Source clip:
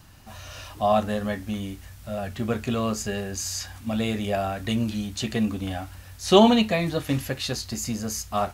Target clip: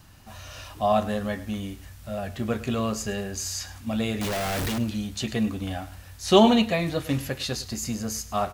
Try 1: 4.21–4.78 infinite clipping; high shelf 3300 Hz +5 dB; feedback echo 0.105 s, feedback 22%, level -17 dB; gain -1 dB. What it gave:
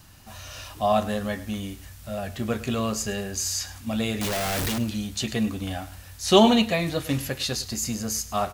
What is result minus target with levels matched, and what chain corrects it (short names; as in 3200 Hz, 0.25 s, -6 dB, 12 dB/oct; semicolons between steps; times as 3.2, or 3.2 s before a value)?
8000 Hz band +3.5 dB
4.21–4.78 infinite clipping; feedback echo 0.105 s, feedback 22%, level -17 dB; gain -1 dB